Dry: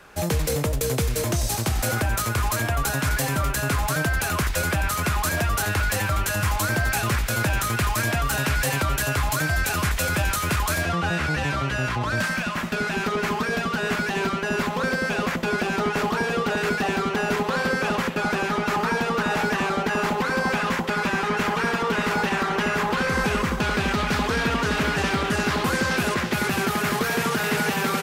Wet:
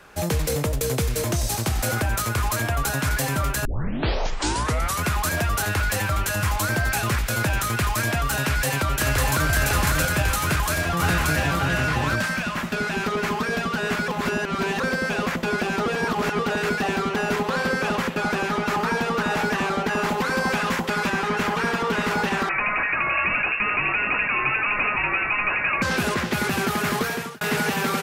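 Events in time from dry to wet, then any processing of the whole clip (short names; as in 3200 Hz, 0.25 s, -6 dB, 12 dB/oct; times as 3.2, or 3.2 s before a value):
3.65 tape start 1.37 s
8.45–9.5 echo throw 0.55 s, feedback 55%, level -1.5 dB
10.41–11.57 echo throw 0.58 s, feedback 10%, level -2 dB
14.08–14.8 reverse
15.86–16.39 reverse
20.09–21.1 high shelf 4900 Hz +4.5 dB
22.49–25.82 inverted band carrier 2700 Hz
27.01–27.41 fade out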